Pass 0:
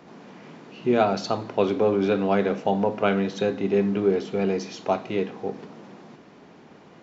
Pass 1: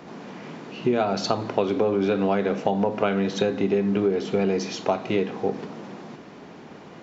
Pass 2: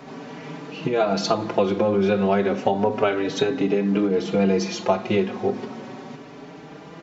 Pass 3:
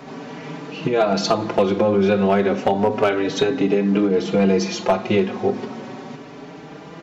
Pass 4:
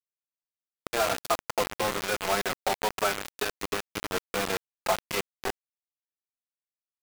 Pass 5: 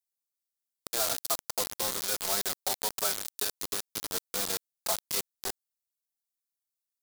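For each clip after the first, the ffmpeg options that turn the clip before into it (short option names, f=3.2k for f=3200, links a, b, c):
-af "acompressor=threshold=-24dB:ratio=10,volume=6dB"
-filter_complex "[0:a]asplit=2[a][b];[b]adelay=4.8,afreqshift=0.33[c];[a][c]amix=inputs=2:normalize=1,volume=5.5dB"
-af "asoftclip=type=hard:threshold=-11.5dB,volume=3dB"
-af "bandpass=f=1.4k:t=q:w=1:csg=0,acrusher=bits=3:mix=0:aa=0.000001,volume=-3.5dB"
-af "aexciter=amount=4.3:drive=5:freq=3.6k,volume=-8.5dB"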